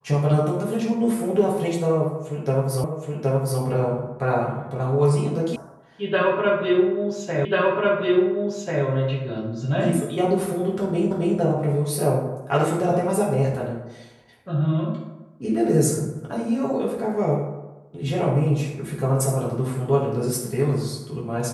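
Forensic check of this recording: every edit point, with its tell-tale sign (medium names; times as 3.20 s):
2.84 s: repeat of the last 0.77 s
5.56 s: sound stops dead
7.45 s: repeat of the last 1.39 s
11.11 s: repeat of the last 0.27 s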